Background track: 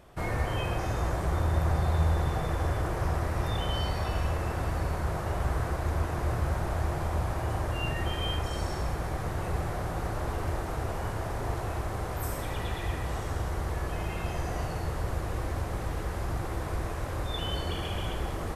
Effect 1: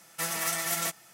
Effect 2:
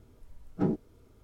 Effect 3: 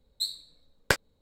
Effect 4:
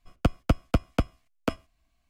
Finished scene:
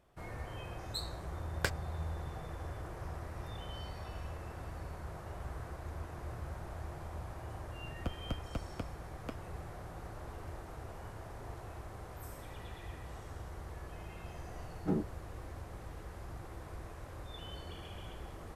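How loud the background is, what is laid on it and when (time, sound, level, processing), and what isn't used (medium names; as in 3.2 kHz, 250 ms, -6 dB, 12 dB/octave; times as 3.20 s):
background track -14 dB
0.74 s: add 3 -10 dB
7.81 s: add 4 -16.5 dB
14.27 s: add 2 -5 dB
not used: 1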